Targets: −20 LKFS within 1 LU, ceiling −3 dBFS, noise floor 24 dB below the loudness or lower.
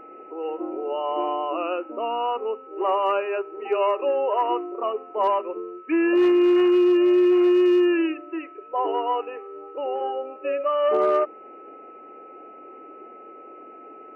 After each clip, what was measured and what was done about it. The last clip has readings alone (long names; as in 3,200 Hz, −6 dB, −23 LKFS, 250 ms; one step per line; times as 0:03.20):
share of clipped samples 0.4%; peaks flattened at −13.5 dBFS; interfering tone 1,300 Hz; level of the tone −43 dBFS; integrated loudness −22.5 LKFS; sample peak −13.5 dBFS; target loudness −20.0 LKFS
→ clipped peaks rebuilt −13.5 dBFS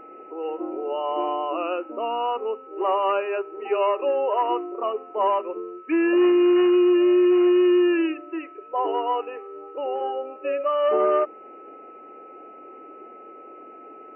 share of clipped samples 0.0%; interfering tone 1,300 Hz; level of the tone −43 dBFS
→ notch filter 1,300 Hz, Q 30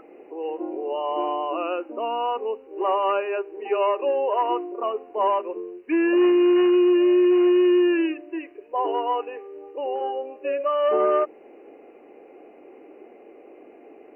interfering tone none found; integrated loudness −22.5 LKFS; sample peak −11.5 dBFS; target loudness −20.0 LKFS
→ level +2.5 dB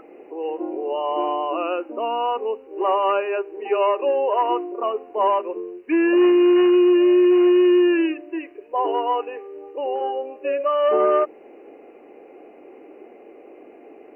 integrated loudness −20.0 LKFS; sample peak −9.0 dBFS; background noise floor −46 dBFS